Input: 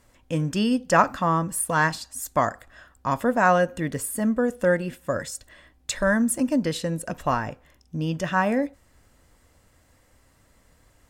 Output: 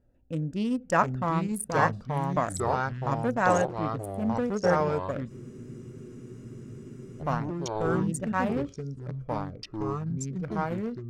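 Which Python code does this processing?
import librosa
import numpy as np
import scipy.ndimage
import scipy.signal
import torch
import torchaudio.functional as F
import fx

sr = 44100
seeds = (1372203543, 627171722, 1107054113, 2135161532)

y = fx.wiener(x, sr, points=41)
y = fx.echo_pitch(y, sr, ms=647, semitones=-3, count=3, db_per_echo=-3.0)
y = fx.spec_freeze(y, sr, seeds[0], at_s=5.32, hold_s=1.88)
y = y * 10.0 ** (-5.0 / 20.0)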